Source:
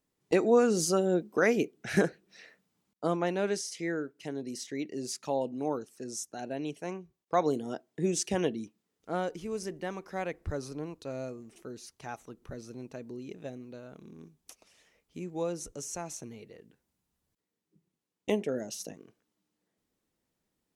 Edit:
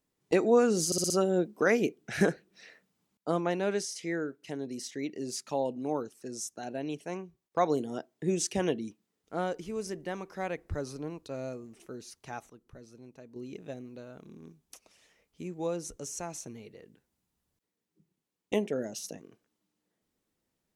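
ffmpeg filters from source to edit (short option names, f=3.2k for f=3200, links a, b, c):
-filter_complex "[0:a]asplit=7[a][b][c][d][e][f][g];[a]atrim=end=0.922[h];[b]atrim=start=0.858:end=0.922[i];[c]atrim=start=0.858:end=0.922[j];[d]atrim=start=0.858:end=0.922[k];[e]atrim=start=0.858:end=12.262[l];[f]atrim=start=12.258:end=13.122,asetpts=PTS-STARTPTS,volume=-8dB[m];[g]atrim=start=13.118[n];[h][i]acrossfade=d=0.004:c1=hsin:c2=hsin[o];[o][j]acrossfade=d=0.004:c1=hsin:c2=hsin[p];[p][k]acrossfade=d=0.004:c1=hsin:c2=hsin[q];[q][l]acrossfade=d=0.004:c1=hsin:c2=hsin[r];[r][m]acrossfade=d=0.004:c1=hsin:c2=hsin[s];[s][n]acrossfade=d=0.004:c1=hsin:c2=hsin"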